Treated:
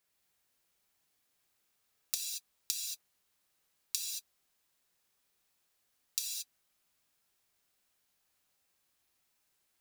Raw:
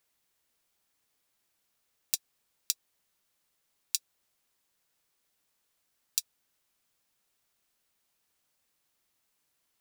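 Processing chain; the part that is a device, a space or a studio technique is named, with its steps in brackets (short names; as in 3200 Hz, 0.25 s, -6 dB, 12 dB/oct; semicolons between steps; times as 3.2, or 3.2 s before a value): parallel distortion (in parallel at -11 dB: hard clip -21 dBFS, distortion -4 dB); on the sum: non-linear reverb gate 0.25 s flat, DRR -2 dB; gain -6.5 dB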